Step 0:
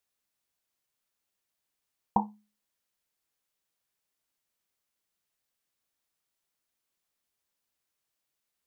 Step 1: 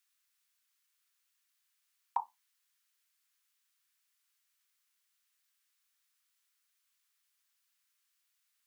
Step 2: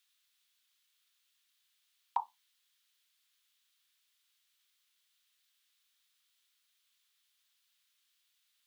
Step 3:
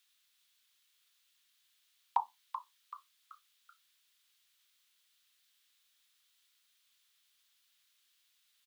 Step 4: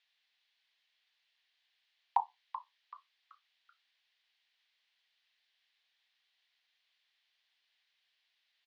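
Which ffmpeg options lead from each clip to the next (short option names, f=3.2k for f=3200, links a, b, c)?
-af "highpass=f=1.2k:w=0.5412,highpass=f=1.2k:w=1.3066,volume=5dB"
-af "equalizer=f=3.5k:t=o:w=0.82:g=10"
-filter_complex "[0:a]asplit=5[a][b][c][d][e];[b]adelay=382,afreqshift=110,volume=-10dB[f];[c]adelay=764,afreqshift=220,volume=-17.5dB[g];[d]adelay=1146,afreqshift=330,volume=-25.1dB[h];[e]adelay=1528,afreqshift=440,volume=-32.6dB[i];[a][f][g][h][i]amix=inputs=5:normalize=0,volume=2.5dB"
-af "highpass=500,equalizer=f=740:t=q:w=4:g=7,equalizer=f=1.3k:t=q:w=4:g=-8,equalizer=f=1.9k:t=q:w=4:g=4,equalizer=f=3.6k:t=q:w=4:g=-3,lowpass=f=4.3k:w=0.5412,lowpass=f=4.3k:w=1.3066"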